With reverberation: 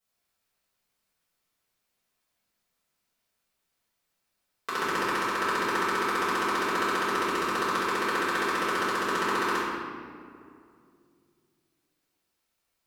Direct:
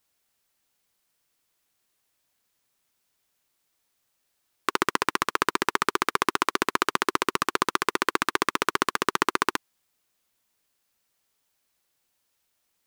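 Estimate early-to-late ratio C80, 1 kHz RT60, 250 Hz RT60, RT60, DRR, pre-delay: 0.0 dB, 2.1 s, 3.2 s, 2.4 s, −12.0 dB, 4 ms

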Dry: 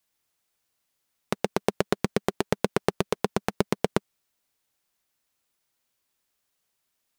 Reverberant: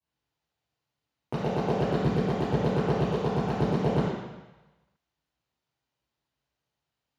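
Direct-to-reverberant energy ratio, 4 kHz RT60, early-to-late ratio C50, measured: −11.0 dB, 1.1 s, −2.0 dB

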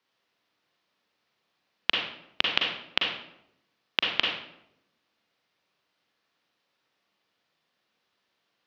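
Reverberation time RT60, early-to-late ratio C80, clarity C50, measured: 0.80 s, 5.5 dB, 2.0 dB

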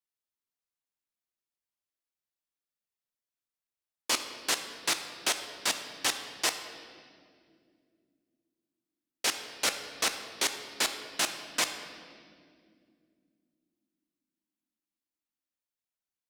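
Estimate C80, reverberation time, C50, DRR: 9.5 dB, 2.3 s, 8.0 dB, 6.5 dB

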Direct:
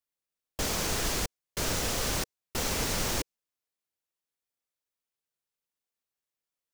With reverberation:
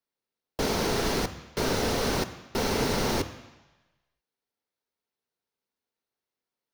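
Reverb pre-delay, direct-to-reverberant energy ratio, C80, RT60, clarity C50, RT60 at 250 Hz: 3 ms, 9.5 dB, 14.5 dB, 1.1 s, 12.5 dB, 0.95 s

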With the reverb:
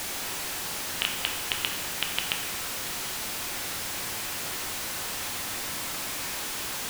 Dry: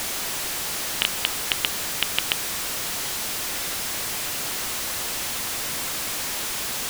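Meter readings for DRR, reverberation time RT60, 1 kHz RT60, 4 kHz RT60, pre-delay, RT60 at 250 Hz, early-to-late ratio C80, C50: 2.0 dB, 1.0 s, 1.0 s, 0.95 s, 6 ms, 1.0 s, 8.0 dB, 5.5 dB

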